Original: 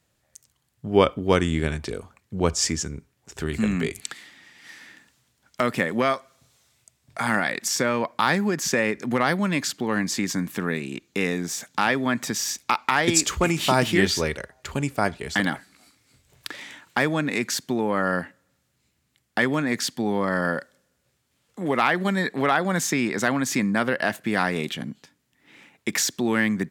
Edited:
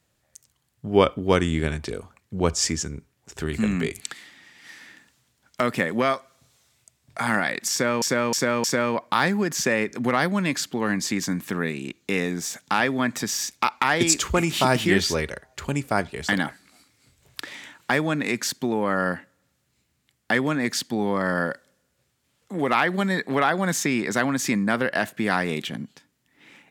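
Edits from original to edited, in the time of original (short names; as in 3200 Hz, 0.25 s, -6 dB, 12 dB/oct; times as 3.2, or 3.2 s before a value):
7.71–8.02 loop, 4 plays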